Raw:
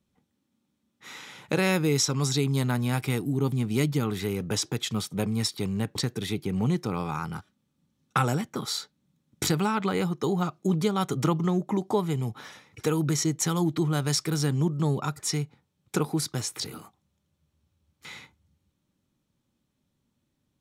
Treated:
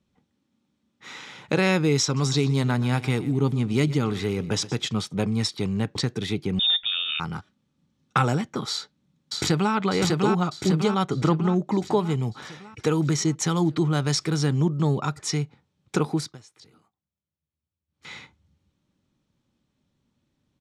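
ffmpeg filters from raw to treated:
ffmpeg -i in.wav -filter_complex "[0:a]asplit=3[link_01][link_02][link_03];[link_01]afade=type=out:start_time=2.16:duration=0.02[link_04];[link_02]aecho=1:1:122|244|366:0.141|0.0509|0.0183,afade=type=in:start_time=2.16:duration=0.02,afade=type=out:start_time=4.85:duration=0.02[link_05];[link_03]afade=type=in:start_time=4.85:duration=0.02[link_06];[link_04][link_05][link_06]amix=inputs=3:normalize=0,asettb=1/sr,asplit=3[link_07][link_08][link_09];[link_07]atrim=end=6.594[link_10];[link_08]atrim=start=6.59:end=7.2,asetpts=PTS-STARTPTS,afade=type=in:duration=0.004:curve=qsin,afade=type=out:start_time=0.606:duration=0.004:curve=qsin,lowpass=frequency=3200:width_type=q:width=0.5098,lowpass=frequency=3200:width_type=q:width=0.6013,lowpass=frequency=3200:width_type=q:width=0.9,lowpass=frequency=3200:width_type=q:width=2.563,afreqshift=-3800[link_11];[link_09]atrim=start=7.196[link_12];[link_10][link_11]acrossfade=duration=0.004:curve1=hsin:curve2=qsin[link_13];[link_13][link_12]acrossfade=duration=0.004:curve1=qsin:curve2=hsin,asplit=2[link_14][link_15];[link_15]afade=type=in:start_time=8.71:duration=0.01,afade=type=out:start_time=9.74:duration=0.01,aecho=0:1:600|1200|1800|2400|3000|3600|4200|4800:0.841395|0.462767|0.254522|0.139987|0.0769929|0.0423461|0.0232904|0.0128097[link_16];[link_14][link_16]amix=inputs=2:normalize=0,asettb=1/sr,asplit=3[link_17][link_18][link_19];[link_17]atrim=end=11.034[link_20];[link_18]atrim=start=11.03:end=11.56,asetpts=PTS-STARTPTS,afade=type=in:duration=0.004:curve=qsin,afade=type=out:start_time=0.526:duration=0.004:curve=qsin,highshelf=frequency=4600:gain=-8.5[link_21];[link_19]atrim=start=11.556[link_22];[link_20][link_21]acrossfade=duration=0.004:curve1=hsin:curve2=qsin[link_23];[link_23][link_22]acrossfade=duration=0.004:curve1=qsin:curve2=hsin,asplit=3[link_24][link_25][link_26];[link_24]atrim=end=16.38,asetpts=PTS-STARTPTS,afade=type=out:start_time=16.14:duration=0.24:silence=0.0944061[link_27];[link_25]atrim=start=16.38:end=17.88,asetpts=PTS-STARTPTS,volume=-20.5dB[link_28];[link_26]atrim=start=17.88,asetpts=PTS-STARTPTS,afade=type=in:duration=0.24:silence=0.0944061[link_29];[link_27][link_28][link_29]concat=n=3:v=0:a=1,lowpass=6500,volume=3dB" out.wav

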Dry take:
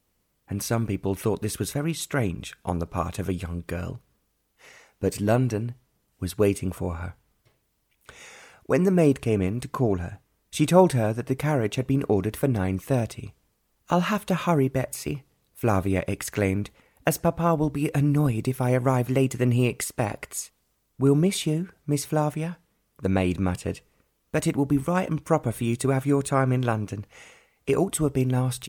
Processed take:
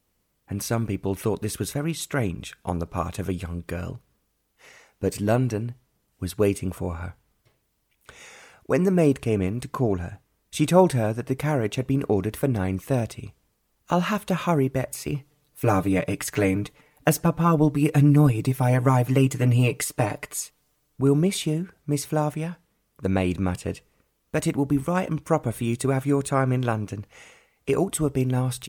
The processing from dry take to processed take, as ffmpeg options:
ffmpeg -i in.wav -filter_complex "[0:a]asettb=1/sr,asplit=3[link_01][link_02][link_03];[link_01]atrim=end=15.124[link_04];[link_02]atrim=start=15.12:end=21.01,asetpts=PTS-STARTPTS,afade=type=in:duration=0.004:curve=qsin,afade=type=out:start_time=5.886:duration=0.004:curve=qsin,aecho=1:1:6.7:0.83,atrim=end_sample=259749[link_05];[link_03]atrim=start=21.006[link_06];[link_04][link_05]acrossfade=duration=0.004:curve1=hsin:curve2=qsin[link_07];[link_07][link_06]acrossfade=duration=0.004:curve1=qsin:curve2=hsin" out.wav

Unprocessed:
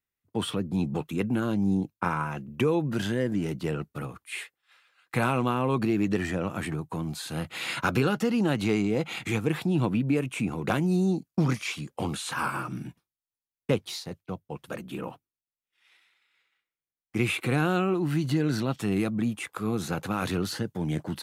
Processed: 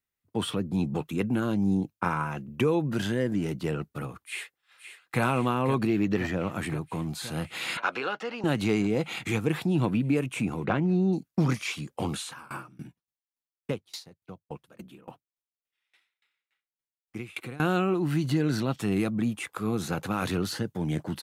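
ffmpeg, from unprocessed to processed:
ffmpeg -i in.wav -filter_complex "[0:a]asplit=2[link_01][link_02];[link_02]afade=type=in:start_time=4.19:duration=0.01,afade=type=out:start_time=5.22:duration=0.01,aecho=0:1:520|1040|1560|2080|2600|3120|3640|4160|4680|5200|5720|6240:0.298538|0.238831|0.191064|0.152852|0.122281|0.097825|0.07826|0.062608|0.0500864|0.0400691|0.0320553|0.0256442[link_03];[link_01][link_03]amix=inputs=2:normalize=0,asettb=1/sr,asplit=3[link_04][link_05][link_06];[link_04]atrim=end=5.874[link_07];[link_05]atrim=start=5.87:end=6.52,asetpts=PTS-STARTPTS,afade=type=in:duration=0.004:curve=qsin,afade=type=out:start_time=0.646:duration=0.004:curve=qsin,equalizer=frequency=8900:width_type=o:width=0.45:gain=-15[link_08];[link_06]atrim=start=6.516[link_09];[link_07][link_08]acrossfade=duration=0.004:curve1=hsin:curve2=qsin[link_10];[link_10][link_09]acrossfade=duration=0.004:curve1=qsin:curve2=hsin,asettb=1/sr,asplit=3[link_11][link_12][link_13];[link_11]atrim=end=7.774[link_14];[link_12]atrim=start=7.77:end=8.44,asetpts=PTS-STARTPTS,afade=type=in:duration=0.004:curve=qsin,afade=type=out:start_time=0.666:duration=0.004:curve=qsin,highpass=600,lowpass=3700[link_15];[link_13]atrim=start=8.436[link_16];[link_14][link_15]acrossfade=duration=0.004:curve1=hsin:curve2=qsin[link_17];[link_17][link_16]acrossfade=duration=0.004:curve1=qsin:curve2=hsin,asettb=1/sr,asplit=3[link_18][link_19][link_20];[link_18]atrim=end=10.644[link_21];[link_19]atrim=start=10.64:end=11.13,asetpts=PTS-STARTPTS,afade=type=in:duration=0.004:curve=qsin,afade=type=out:start_time=0.486:duration=0.004:curve=qsin,lowpass=2500[link_22];[link_20]atrim=start=11.126[link_23];[link_21][link_22]acrossfade=duration=0.004:curve1=hsin:curve2=qsin[link_24];[link_24][link_23]acrossfade=duration=0.004:curve1=qsin:curve2=hsin,asettb=1/sr,asplit=3[link_25][link_26][link_27];[link_25]atrim=end=12.224[link_28];[link_26]atrim=start=12.22:end=17.6,asetpts=PTS-STARTPTS,afade=type=in:duration=0.004:curve=qsin,afade=type=out:start_time=5.376:duration=0.004:curve=qsin,aeval=exprs='val(0)*pow(10,-26*if(lt(mod(3.5*n/s,1),2*abs(3.5)/1000),1-mod(3.5*n/s,1)/(2*abs(3.5)/1000),(mod(3.5*n/s,1)-2*abs(3.5)/1000)/(1-2*abs(3.5)/1000))/20)':channel_layout=same[link_29];[link_27]atrim=start=17.596[link_30];[link_28][link_29]acrossfade=duration=0.004:curve1=hsin:curve2=qsin[link_31];[link_31][link_30]acrossfade=duration=0.004:curve1=qsin:curve2=hsin" out.wav

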